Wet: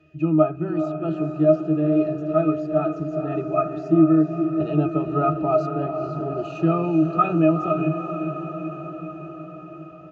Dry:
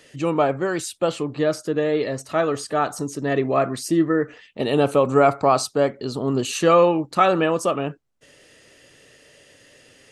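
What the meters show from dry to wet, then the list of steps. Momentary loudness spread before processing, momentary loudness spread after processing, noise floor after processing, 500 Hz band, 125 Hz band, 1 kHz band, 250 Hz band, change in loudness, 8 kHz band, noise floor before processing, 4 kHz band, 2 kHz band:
8 LU, 15 LU, −39 dBFS, −3.0 dB, +4.0 dB, −4.0 dB, +4.0 dB, −1.0 dB, below −25 dB, −54 dBFS, below −15 dB, −10.0 dB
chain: resonances in every octave D#, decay 0.15 s
downsampling to 16,000 Hz
feedback delay with all-pass diffusion 460 ms, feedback 67%, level −8 dB
level +9 dB

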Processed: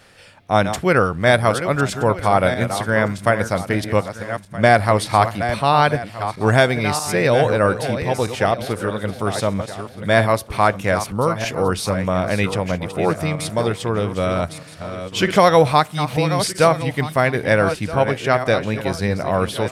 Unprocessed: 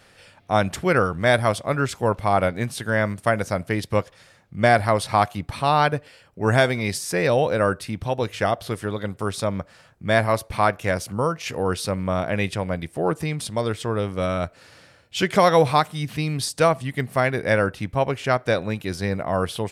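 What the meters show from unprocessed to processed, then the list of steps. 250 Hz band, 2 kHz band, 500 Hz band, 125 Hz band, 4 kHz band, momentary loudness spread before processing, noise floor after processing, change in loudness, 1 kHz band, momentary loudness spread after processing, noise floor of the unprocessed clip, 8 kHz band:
+4.0 dB, +4.0 dB, +4.0 dB, +4.0 dB, +4.0 dB, 9 LU, −39 dBFS, +4.0 dB, +4.0 dB, 8 LU, −54 dBFS, +4.0 dB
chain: feedback delay that plays each chunk backwards 636 ms, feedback 44%, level −9.5 dB
level +3.5 dB

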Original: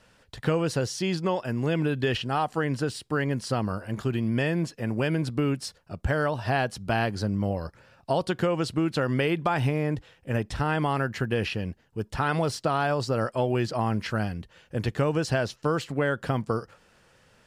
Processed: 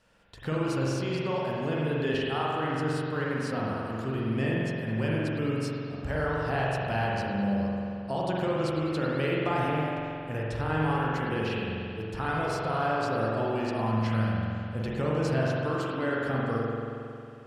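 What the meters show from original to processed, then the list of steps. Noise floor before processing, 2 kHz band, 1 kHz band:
−61 dBFS, −2.0 dB, −1.0 dB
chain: spring reverb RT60 2.6 s, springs 45 ms, chirp 65 ms, DRR −5 dB
level −8 dB

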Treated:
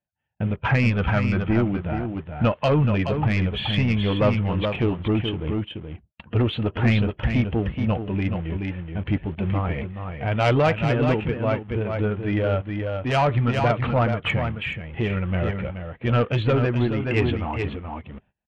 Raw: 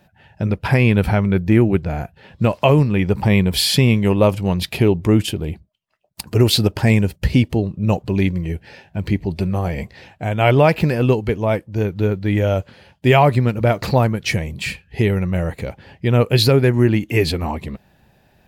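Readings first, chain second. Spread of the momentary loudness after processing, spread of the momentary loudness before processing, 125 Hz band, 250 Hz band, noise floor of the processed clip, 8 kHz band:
9 LU, 13 LU, −5.0 dB, −5.5 dB, −58 dBFS, below −20 dB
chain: spectral magnitudes quantised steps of 15 dB
in parallel at −10 dB: bit reduction 5 bits
on the sum: noise gate −41 dBFS, range −27 dB
elliptic low-pass filter 3,200 Hz, stop band 40 dB
dynamic equaliser 1,300 Hz, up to +6 dB, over −39 dBFS, Q 4.4
soft clipping −8.5 dBFS, distortion −14 dB
parametric band 180 Hz −3.5 dB 0.33 octaves
notch filter 390 Hz, Q 12
on a send: single-tap delay 426 ms −6 dB
on the sum: amplitude modulation by smooth noise, depth 55%
level −2 dB

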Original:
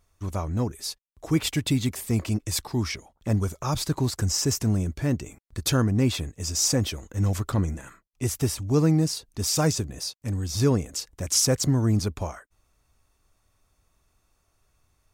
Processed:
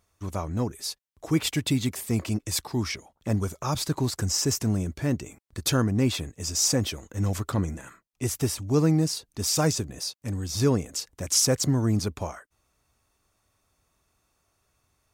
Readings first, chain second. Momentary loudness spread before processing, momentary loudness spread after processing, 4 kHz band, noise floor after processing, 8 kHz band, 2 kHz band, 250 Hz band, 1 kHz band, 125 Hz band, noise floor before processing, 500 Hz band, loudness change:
10 LU, 11 LU, 0.0 dB, −73 dBFS, 0.0 dB, 0.0 dB, −1.0 dB, 0.0 dB, −2.5 dB, −70 dBFS, 0.0 dB, −1.0 dB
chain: high-pass filter 100 Hz 6 dB per octave

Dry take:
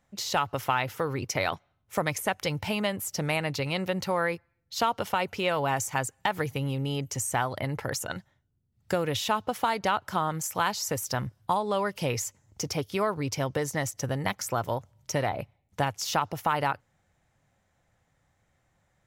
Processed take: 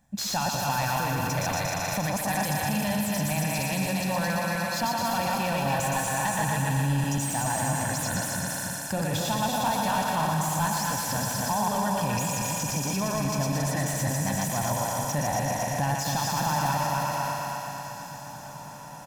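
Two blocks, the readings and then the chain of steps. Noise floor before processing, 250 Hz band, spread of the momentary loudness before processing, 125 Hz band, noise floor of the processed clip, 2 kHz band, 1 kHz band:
−73 dBFS, +5.0 dB, 5 LU, +5.5 dB, −40 dBFS, +2.0 dB, +3.0 dB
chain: feedback delay that plays each chunk backwards 138 ms, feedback 64%, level −1.5 dB
high-shelf EQ 9,600 Hz −5.5 dB
feedback echo with a high-pass in the loop 117 ms, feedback 81%, high-pass 290 Hz, level −5.5 dB
gain into a clipping stage and back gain 18 dB
drawn EQ curve 110 Hz 0 dB, 220 Hz +7 dB, 340 Hz 0 dB, 2,900 Hz −3 dB, 13,000 Hz +11 dB
brickwall limiter −22 dBFS, peak gain reduction 9.5 dB
comb filter 1.2 ms, depth 67%
feedback delay with all-pass diffusion 1,820 ms, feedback 57%, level −16 dB
slew-rate limiting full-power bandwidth 200 Hz
level +1.5 dB

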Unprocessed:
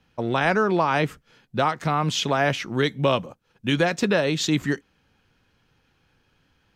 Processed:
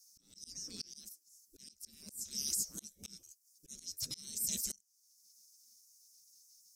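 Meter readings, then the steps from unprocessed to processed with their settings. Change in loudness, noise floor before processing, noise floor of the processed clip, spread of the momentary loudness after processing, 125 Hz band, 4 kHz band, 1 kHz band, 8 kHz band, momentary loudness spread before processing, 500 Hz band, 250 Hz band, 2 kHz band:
−16.5 dB, −67 dBFS, −73 dBFS, 21 LU, −33.0 dB, −15.0 dB, below −40 dB, −0.5 dB, 8 LU, below −40 dB, −31.0 dB, −39.0 dB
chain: gate on every frequency bin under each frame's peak −25 dB weak
drawn EQ curve 120 Hz 0 dB, 210 Hz +8 dB, 290 Hz −2 dB, 440 Hz −8 dB, 860 Hz −30 dB, 2,300 Hz −21 dB, 3,500 Hz −15 dB, 5,300 Hz +13 dB, 7,600 Hz +14 dB
volume swells 664 ms
level +7 dB

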